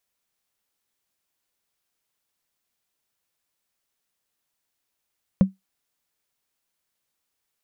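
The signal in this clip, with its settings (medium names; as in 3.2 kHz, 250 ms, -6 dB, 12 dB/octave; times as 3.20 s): wood hit, lowest mode 191 Hz, decay 0.16 s, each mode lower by 11.5 dB, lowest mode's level -7.5 dB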